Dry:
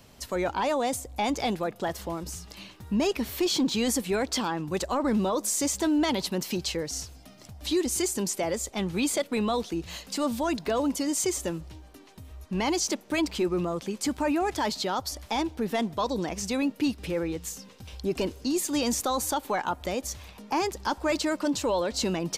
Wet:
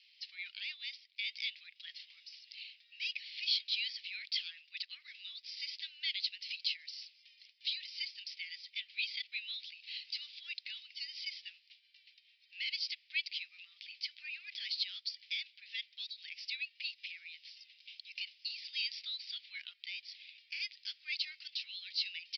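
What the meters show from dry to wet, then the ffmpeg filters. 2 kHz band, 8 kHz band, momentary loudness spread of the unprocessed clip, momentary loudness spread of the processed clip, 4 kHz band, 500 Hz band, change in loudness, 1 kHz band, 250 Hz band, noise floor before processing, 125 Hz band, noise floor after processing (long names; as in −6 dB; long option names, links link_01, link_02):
−5.5 dB, −31.0 dB, 9 LU, 13 LU, −2.0 dB, below −40 dB, −11.0 dB, below −40 dB, below −40 dB, −51 dBFS, below −40 dB, −69 dBFS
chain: -af "asuperpass=centerf=4000:order=12:qfactor=0.8,aresample=11025,aresample=44100,volume=-1.5dB"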